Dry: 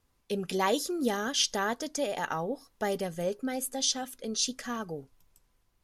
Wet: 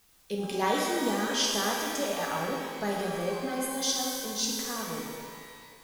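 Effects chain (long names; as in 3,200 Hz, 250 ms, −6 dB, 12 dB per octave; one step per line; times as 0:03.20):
in parallel at −12 dB: bit-depth reduction 8 bits, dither triangular
on the sum: reverb with rising layers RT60 2 s, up +12 semitones, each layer −8 dB, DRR −2 dB
level −5.5 dB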